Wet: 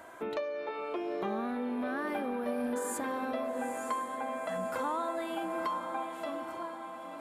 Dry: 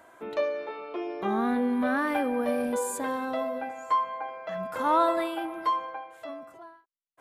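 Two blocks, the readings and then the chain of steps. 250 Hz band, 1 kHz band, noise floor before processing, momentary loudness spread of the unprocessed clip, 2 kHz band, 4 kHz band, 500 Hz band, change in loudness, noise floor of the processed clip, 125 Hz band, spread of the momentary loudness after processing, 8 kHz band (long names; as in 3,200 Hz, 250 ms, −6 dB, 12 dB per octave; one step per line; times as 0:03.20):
−6.0 dB, −7.0 dB, −63 dBFS, 13 LU, −5.5 dB, −5.0 dB, −5.0 dB, −6.5 dB, −44 dBFS, can't be measured, 5 LU, −3.5 dB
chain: downward compressor 6 to 1, threshold −37 dBFS, peak gain reduction 17 dB
on a send: feedback delay with all-pass diffusion 921 ms, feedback 54%, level −8 dB
on the sum: level +4 dB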